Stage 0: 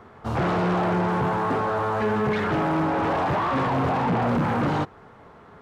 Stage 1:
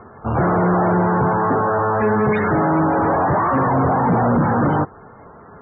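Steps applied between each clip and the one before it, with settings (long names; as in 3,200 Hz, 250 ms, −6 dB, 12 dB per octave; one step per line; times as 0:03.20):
spectral peaks only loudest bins 64
level +6.5 dB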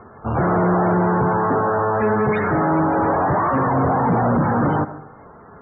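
on a send at −12.5 dB: elliptic low-pass filter 2,300 Hz, stop band 40 dB + convolution reverb RT60 0.65 s, pre-delay 55 ms
on the sum: level −1.5 dB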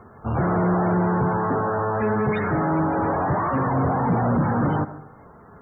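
bass and treble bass +4 dB, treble +15 dB
level −5 dB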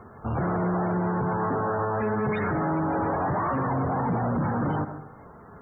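brickwall limiter −20 dBFS, peak gain reduction 7 dB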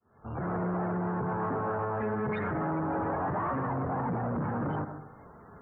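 fade in at the beginning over 0.55 s
saturating transformer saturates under 210 Hz
level −4 dB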